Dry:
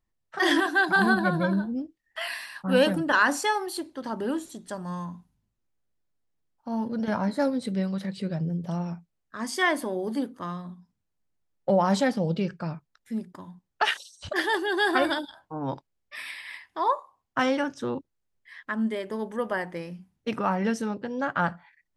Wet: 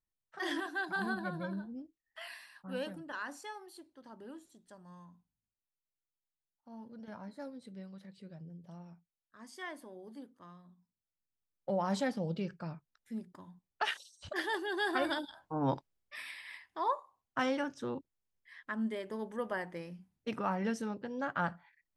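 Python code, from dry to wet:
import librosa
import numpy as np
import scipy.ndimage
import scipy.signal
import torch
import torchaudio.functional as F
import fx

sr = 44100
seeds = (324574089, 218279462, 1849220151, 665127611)

y = fx.gain(x, sr, db=fx.line((2.28, -14.0), (3.08, -20.0), (10.66, -20.0), (11.99, -9.5), (14.98, -9.5), (15.66, 0.0), (16.28, -8.0)))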